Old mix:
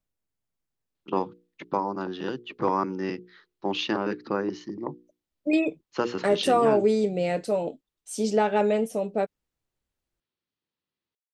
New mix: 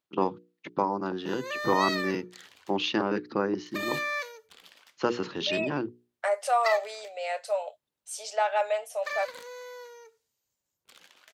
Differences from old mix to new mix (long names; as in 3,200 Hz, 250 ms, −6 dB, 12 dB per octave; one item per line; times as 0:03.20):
first voice: entry −0.95 s
second voice: add elliptic high-pass filter 600 Hz, stop band 50 dB
background: unmuted